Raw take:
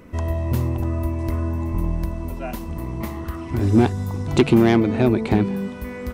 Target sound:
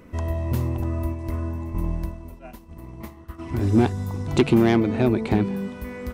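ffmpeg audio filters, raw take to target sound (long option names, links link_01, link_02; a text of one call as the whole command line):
ffmpeg -i in.wav -filter_complex "[0:a]asplit=3[link_01][link_02][link_03];[link_01]afade=type=out:start_time=1.12:duration=0.02[link_04];[link_02]agate=range=-33dB:threshold=-20dB:ratio=3:detection=peak,afade=type=in:start_time=1.12:duration=0.02,afade=type=out:start_time=3.38:duration=0.02[link_05];[link_03]afade=type=in:start_time=3.38:duration=0.02[link_06];[link_04][link_05][link_06]amix=inputs=3:normalize=0,volume=-2.5dB" out.wav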